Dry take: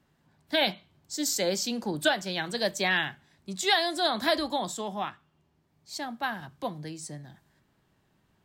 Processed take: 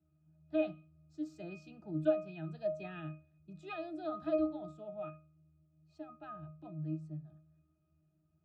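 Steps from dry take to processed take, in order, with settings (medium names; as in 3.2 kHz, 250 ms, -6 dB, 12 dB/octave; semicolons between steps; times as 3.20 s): wow and flutter 19 cents; pitch-class resonator D#, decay 0.35 s; trim +5.5 dB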